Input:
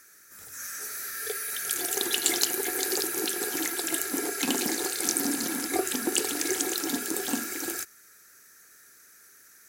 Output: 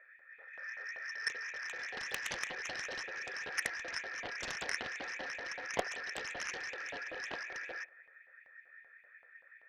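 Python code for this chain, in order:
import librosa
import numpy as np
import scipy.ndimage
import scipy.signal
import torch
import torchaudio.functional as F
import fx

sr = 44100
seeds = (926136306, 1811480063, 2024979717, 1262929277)

y = fx.formant_cascade(x, sr, vowel='e')
y = fx.filter_lfo_highpass(y, sr, shape='saw_up', hz=5.2, low_hz=650.0, high_hz=3000.0, q=2.6)
y = fx.cheby_harmonics(y, sr, harmonics=(7,), levels_db=(-10,), full_scale_db=-30.0)
y = fx.echo_wet_bandpass(y, sr, ms=73, feedback_pct=67, hz=700.0, wet_db=-22.0)
y = y * librosa.db_to_amplitude(9.5)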